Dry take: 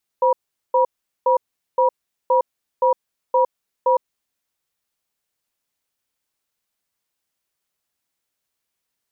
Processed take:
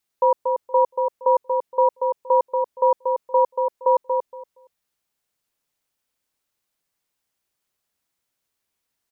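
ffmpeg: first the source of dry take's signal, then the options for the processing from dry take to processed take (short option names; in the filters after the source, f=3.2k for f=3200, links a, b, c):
-f lavfi -i "aevalsrc='0.168*(sin(2*PI*517*t)+sin(2*PI*964*t))*clip(min(mod(t,0.52),0.11-mod(t,0.52))/0.005,0,1)':d=3.76:s=44100"
-filter_complex "[0:a]asplit=2[a][b];[b]adelay=234,lowpass=f=930:p=1,volume=-3dB,asplit=2[c][d];[d]adelay=234,lowpass=f=930:p=1,volume=0.21,asplit=2[e][f];[f]adelay=234,lowpass=f=930:p=1,volume=0.21[g];[a][c][e][g]amix=inputs=4:normalize=0"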